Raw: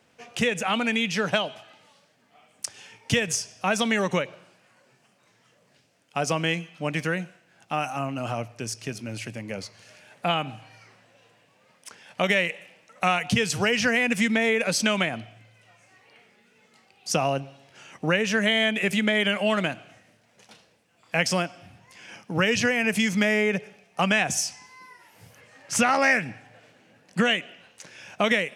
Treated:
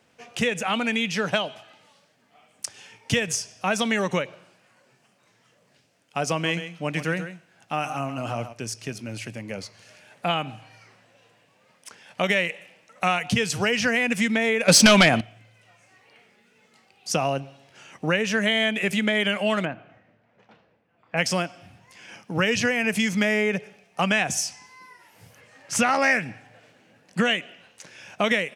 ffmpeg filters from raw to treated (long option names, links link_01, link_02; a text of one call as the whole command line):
ffmpeg -i in.wav -filter_complex "[0:a]asplit=3[link_01][link_02][link_03];[link_01]afade=type=out:start_time=6.44:duration=0.02[link_04];[link_02]aecho=1:1:134:0.299,afade=type=in:start_time=6.44:duration=0.02,afade=type=out:start_time=8.52:duration=0.02[link_05];[link_03]afade=type=in:start_time=8.52:duration=0.02[link_06];[link_04][link_05][link_06]amix=inputs=3:normalize=0,asettb=1/sr,asplit=3[link_07][link_08][link_09];[link_07]atrim=end=14.684[link_10];[link_08]atrim=start=14.68:end=15.21,asetpts=PTS-STARTPTS,afade=type=in:duration=0.004:curve=qsin,afade=type=out:start_time=0.526:duration=0.004:curve=qsin,aeval=exprs='0.422*sin(PI/2*2.51*val(0)/0.422)':channel_layout=same[link_11];[link_09]atrim=start=15.206[link_12];[link_10][link_11]acrossfade=duration=0.004:curve1=hsin:curve2=qsin[link_13];[link_13][link_12]acrossfade=duration=0.004:curve1=qsin:curve2=hsin,asplit=3[link_14][link_15][link_16];[link_14]afade=type=out:start_time=19.64:duration=0.02[link_17];[link_15]lowpass=1800,afade=type=in:start_time=19.64:duration=0.02,afade=type=out:start_time=21.16:duration=0.02[link_18];[link_16]afade=type=in:start_time=21.16:duration=0.02[link_19];[link_17][link_18][link_19]amix=inputs=3:normalize=0" out.wav